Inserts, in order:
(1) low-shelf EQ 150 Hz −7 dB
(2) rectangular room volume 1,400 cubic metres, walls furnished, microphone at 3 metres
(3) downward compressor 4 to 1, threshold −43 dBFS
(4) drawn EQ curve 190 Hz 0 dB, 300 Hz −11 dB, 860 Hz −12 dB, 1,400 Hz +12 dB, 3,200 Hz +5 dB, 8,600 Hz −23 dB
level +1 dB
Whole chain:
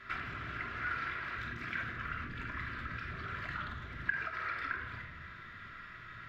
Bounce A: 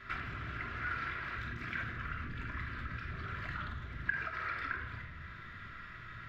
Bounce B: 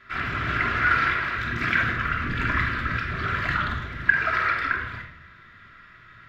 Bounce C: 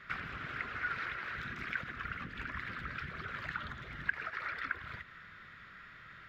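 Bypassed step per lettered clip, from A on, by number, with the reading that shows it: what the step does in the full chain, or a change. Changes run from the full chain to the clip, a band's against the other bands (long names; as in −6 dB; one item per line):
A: 1, 125 Hz band +4.0 dB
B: 3, average gain reduction 11.0 dB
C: 2, change in crest factor +2.0 dB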